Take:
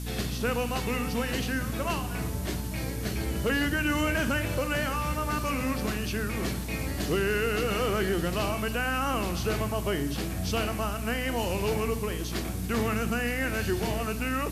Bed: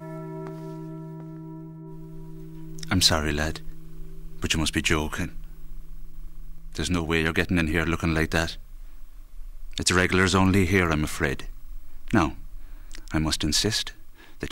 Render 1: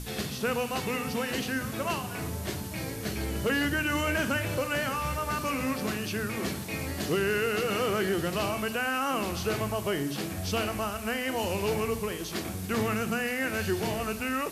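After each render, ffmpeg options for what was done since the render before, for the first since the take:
ffmpeg -i in.wav -af "bandreject=frequency=60:width_type=h:width=6,bandreject=frequency=120:width_type=h:width=6,bandreject=frequency=180:width_type=h:width=6,bandreject=frequency=240:width_type=h:width=6,bandreject=frequency=300:width_type=h:width=6" out.wav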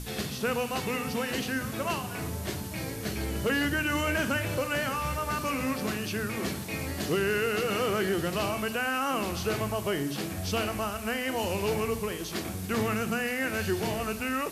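ffmpeg -i in.wav -af anull out.wav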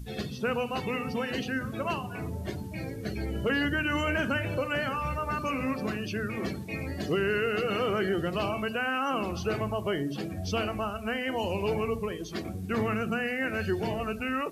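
ffmpeg -i in.wav -af "afftdn=noise_reduction=15:noise_floor=-37" out.wav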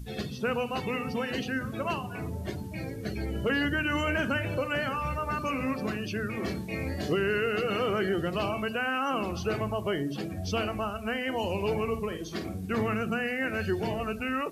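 ffmpeg -i in.wav -filter_complex "[0:a]asettb=1/sr,asplit=3[link_01][link_02][link_03];[link_01]atrim=end=6.444[link_04];[link_02]atrim=start=6.44:end=7.13,asetpts=PTS-STARTPTS,afade=type=in:duration=0.004:curve=qsin,afade=type=out:start_time=0.686:duration=0.004:curve=qsin,asplit=2[link_05][link_06];[link_06]adelay=27,volume=-4dB[link_07];[link_05][link_07]amix=inputs=2:normalize=0,atrim=end_sample=30429[link_08];[link_03]atrim=start=7.126[link_09];[link_04][link_08]acrossfade=duration=0.004:curve1=hsin:curve2=qsin[link_10];[link_10][link_09]acrossfade=duration=0.004:curve1=qsin:curve2=hsin,asettb=1/sr,asplit=3[link_11][link_12][link_13];[link_11]atrim=end=11.834[link_14];[link_12]atrim=start=11.83:end=12.67,asetpts=PTS-STARTPTS,afade=type=in:duration=0.004:curve=qsin,afade=type=out:start_time=0.836:duration=0.004:curve=qsin,asplit=2[link_15][link_16];[link_16]adelay=49,volume=-9.5dB[link_17];[link_15][link_17]amix=inputs=2:normalize=0,atrim=end_sample=37044[link_18];[link_13]atrim=start=12.666[link_19];[link_14][link_18]acrossfade=duration=0.004:curve1=hsin:curve2=qsin[link_20];[link_20][link_19]acrossfade=duration=0.004:curve1=qsin:curve2=hsin" out.wav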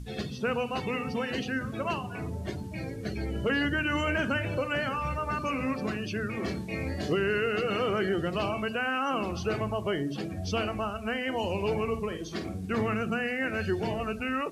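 ffmpeg -i in.wav -af "lowpass=10000" out.wav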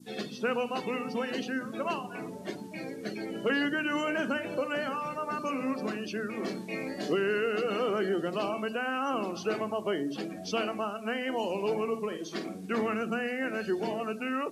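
ffmpeg -i in.wav -af "highpass=frequency=200:width=0.5412,highpass=frequency=200:width=1.3066,adynamicequalizer=threshold=0.00631:dfrequency=2200:dqfactor=1:tfrequency=2200:tqfactor=1:attack=5:release=100:ratio=0.375:range=3:mode=cutabove:tftype=bell" out.wav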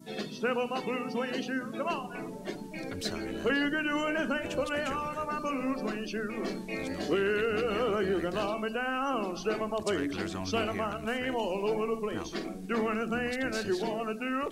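ffmpeg -i in.wav -i bed.wav -filter_complex "[1:a]volume=-18.5dB[link_01];[0:a][link_01]amix=inputs=2:normalize=0" out.wav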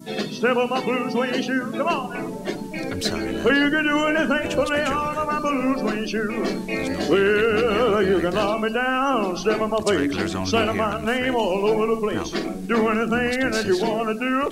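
ffmpeg -i in.wav -af "volume=10dB" out.wav

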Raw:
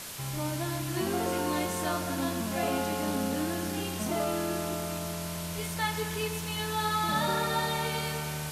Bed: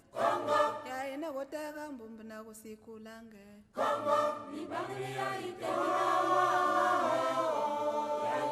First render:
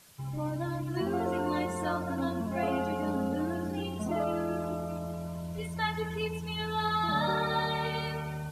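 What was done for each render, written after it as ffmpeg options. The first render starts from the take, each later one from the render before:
ffmpeg -i in.wav -af "afftdn=noise_reduction=17:noise_floor=-36" out.wav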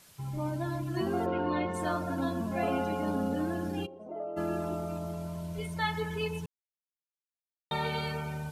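ffmpeg -i in.wav -filter_complex "[0:a]asplit=3[link_01][link_02][link_03];[link_01]afade=type=out:start_time=1.25:duration=0.02[link_04];[link_02]lowpass=frequency=3700:width=0.5412,lowpass=frequency=3700:width=1.3066,afade=type=in:start_time=1.25:duration=0.02,afade=type=out:start_time=1.73:duration=0.02[link_05];[link_03]afade=type=in:start_time=1.73:duration=0.02[link_06];[link_04][link_05][link_06]amix=inputs=3:normalize=0,asplit=3[link_07][link_08][link_09];[link_07]afade=type=out:start_time=3.85:duration=0.02[link_10];[link_08]bandpass=frequency=510:width_type=q:width=3.7,afade=type=in:start_time=3.85:duration=0.02,afade=type=out:start_time=4.36:duration=0.02[link_11];[link_09]afade=type=in:start_time=4.36:duration=0.02[link_12];[link_10][link_11][link_12]amix=inputs=3:normalize=0,asplit=3[link_13][link_14][link_15];[link_13]atrim=end=6.46,asetpts=PTS-STARTPTS,afade=type=out:start_time=6.456:duration=0.004:curve=hsin[link_16];[link_14]atrim=start=6.46:end=7.71,asetpts=PTS-STARTPTS,volume=0[link_17];[link_15]atrim=start=7.71,asetpts=PTS-STARTPTS,afade=type=in:duration=0.004:curve=hsin[link_18];[link_16][link_17][link_18]concat=n=3:v=0:a=1" out.wav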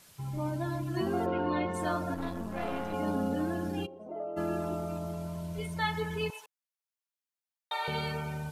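ffmpeg -i in.wav -filter_complex "[0:a]asettb=1/sr,asplit=3[link_01][link_02][link_03];[link_01]atrim=end=2.144[link_04];[link_02]atrim=start=2.14:end=2.94,asetpts=PTS-STARTPTS,afade=type=in:duration=0.004:curve=qsin,afade=type=out:start_time=0.796:duration=0.004:curve=qsin,aeval=exprs='(tanh(25.1*val(0)+0.8)-tanh(0.8))/25.1':channel_layout=same[link_05];[link_03]atrim=start=2.936[link_06];[link_04][link_05]acrossfade=duration=0.004:curve1=hsin:curve2=qsin[link_07];[link_07][link_06]acrossfade=duration=0.004:curve1=qsin:curve2=hsin,asettb=1/sr,asplit=3[link_08][link_09][link_10];[link_08]atrim=end=6.304[link_11];[link_09]atrim=start=6.3:end=7.88,asetpts=PTS-STARTPTS,afade=type=in:duration=0.004:curve=qsin,afade=type=out:start_time=1.576:duration=0.004:curve=qsin,highpass=frequency=620:width=0.5412,highpass=frequency=620:width=1.3066[link_12];[link_10]atrim=start=7.876[link_13];[link_11][link_12]acrossfade=duration=0.004:curve1=hsin:curve2=qsin[link_14];[link_14][link_13]acrossfade=duration=0.004:curve1=qsin:curve2=hsin" out.wav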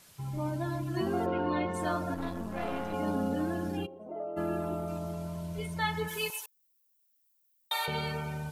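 ffmpeg -i in.wav -filter_complex "[0:a]asettb=1/sr,asplit=3[link_01][link_02][link_03];[link_01]atrim=end=3.774[link_04];[link_02]atrim=start=3.77:end=4.88,asetpts=PTS-STARTPTS,afade=type=in:duration=0.004:curve=qsin,afade=type=out:start_time=1.106:duration=0.004:curve=qsin,equalizer=frequency=5700:width=1.2:gain=-7[link_05];[link_03]atrim=start=4.876[link_06];[link_04][link_05]acrossfade=duration=0.004:curve1=hsin:curve2=qsin[link_07];[link_07][link_06]acrossfade=duration=0.004:curve1=qsin:curve2=hsin,asplit=3[link_08][link_09][link_10];[link_08]afade=type=out:start_time=6.07:duration=0.02[link_11];[link_09]aemphasis=mode=production:type=riaa,afade=type=in:start_time=6.07:duration=0.02,afade=type=out:start_time=7.85:duration=0.02[link_12];[link_10]afade=type=in:start_time=7.85:duration=0.02[link_13];[link_11][link_12][link_13]amix=inputs=3:normalize=0" out.wav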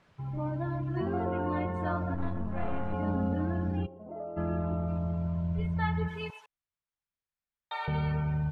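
ffmpeg -i in.wav -af "asubboost=boost=5:cutoff=150,lowpass=1900" out.wav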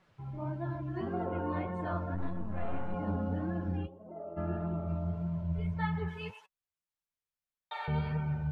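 ffmpeg -i in.wav -af "flanger=delay=5.3:depth=8.1:regen=40:speed=1.7:shape=sinusoidal" out.wav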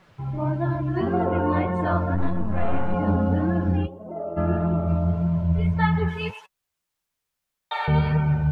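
ffmpeg -i in.wav -af "volume=12dB" out.wav

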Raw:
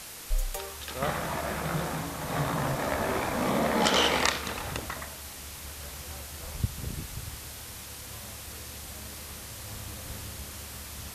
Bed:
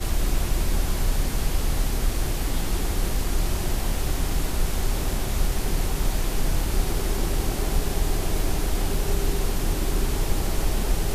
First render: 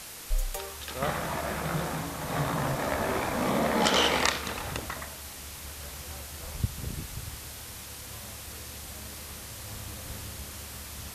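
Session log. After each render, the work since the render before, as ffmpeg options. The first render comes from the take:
ffmpeg -i in.wav -af anull out.wav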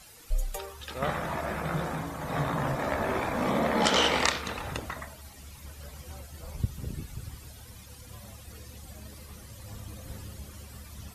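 ffmpeg -i in.wav -af "afftdn=noise_reduction=13:noise_floor=-43" out.wav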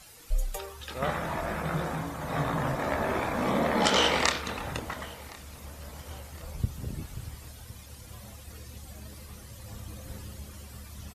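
ffmpeg -i in.wav -filter_complex "[0:a]asplit=2[link_01][link_02];[link_02]adelay=25,volume=-13dB[link_03];[link_01][link_03]amix=inputs=2:normalize=0,asplit=2[link_04][link_05];[link_05]adelay=1063,lowpass=frequency=4700:poles=1,volume=-21.5dB,asplit=2[link_06][link_07];[link_07]adelay=1063,lowpass=frequency=4700:poles=1,volume=0.5,asplit=2[link_08][link_09];[link_09]adelay=1063,lowpass=frequency=4700:poles=1,volume=0.5,asplit=2[link_10][link_11];[link_11]adelay=1063,lowpass=frequency=4700:poles=1,volume=0.5[link_12];[link_04][link_06][link_08][link_10][link_12]amix=inputs=5:normalize=0" out.wav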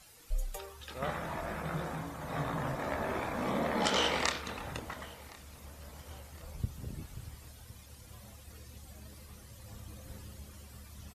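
ffmpeg -i in.wav -af "volume=-6dB" out.wav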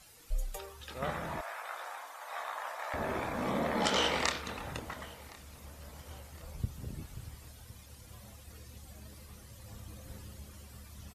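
ffmpeg -i in.wav -filter_complex "[0:a]asettb=1/sr,asplit=3[link_01][link_02][link_03];[link_01]atrim=end=1.414[link_04];[link_02]atrim=start=1.41:end=2.94,asetpts=PTS-STARTPTS,afade=type=in:duration=0.004:curve=qsin,afade=type=out:start_time=1.526:duration=0.004:curve=qsin,highpass=frequency=700:width=0.5412,highpass=frequency=700:width=1.3066[link_05];[link_03]atrim=start=2.936[link_06];[link_04][link_05]acrossfade=duration=0.004:curve1=hsin:curve2=qsin[link_07];[link_07][link_06]acrossfade=duration=0.004:curve1=qsin:curve2=hsin" out.wav

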